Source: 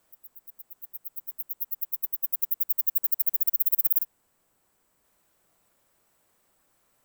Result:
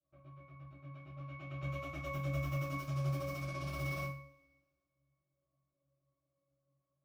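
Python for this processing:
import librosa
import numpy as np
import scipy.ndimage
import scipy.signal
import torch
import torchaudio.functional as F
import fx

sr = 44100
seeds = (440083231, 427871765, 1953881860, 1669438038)

y = fx.leveller(x, sr, passes=5)
y = fx.octave_resonator(y, sr, note='C#', decay_s=0.48)
y = fx.env_lowpass(y, sr, base_hz=1300.0, full_db=-52.0)
y = fx.rev_double_slope(y, sr, seeds[0], early_s=0.41, late_s=1.8, knee_db=-27, drr_db=-8.5)
y = y * librosa.db_to_amplitude(7.5)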